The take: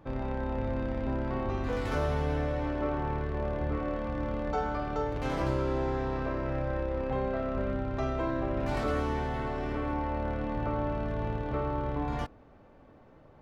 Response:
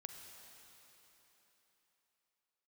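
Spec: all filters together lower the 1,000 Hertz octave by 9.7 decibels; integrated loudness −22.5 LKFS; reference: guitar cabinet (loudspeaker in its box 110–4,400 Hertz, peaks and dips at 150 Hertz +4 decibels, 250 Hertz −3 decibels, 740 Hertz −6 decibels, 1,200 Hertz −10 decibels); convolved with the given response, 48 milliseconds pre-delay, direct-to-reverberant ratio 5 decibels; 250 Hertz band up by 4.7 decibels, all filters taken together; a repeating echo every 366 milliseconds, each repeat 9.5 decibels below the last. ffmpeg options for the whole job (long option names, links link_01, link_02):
-filter_complex "[0:a]equalizer=frequency=250:width_type=o:gain=8,equalizer=frequency=1000:width_type=o:gain=-6.5,aecho=1:1:366|732|1098|1464:0.335|0.111|0.0365|0.012,asplit=2[link_01][link_02];[1:a]atrim=start_sample=2205,adelay=48[link_03];[link_02][link_03]afir=irnorm=-1:irlink=0,volume=-0.5dB[link_04];[link_01][link_04]amix=inputs=2:normalize=0,highpass=110,equalizer=frequency=150:width_type=q:width=4:gain=4,equalizer=frequency=250:width_type=q:width=4:gain=-3,equalizer=frequency=740:width_type=q:width=4:gain=-6,equalizer=frequency=1200:width_type=q:width=4:gain=-10,lowpass=frequency=4400:width=0.5412,lowpass=frequency=4400:width=1.3066,volume=7.5dB"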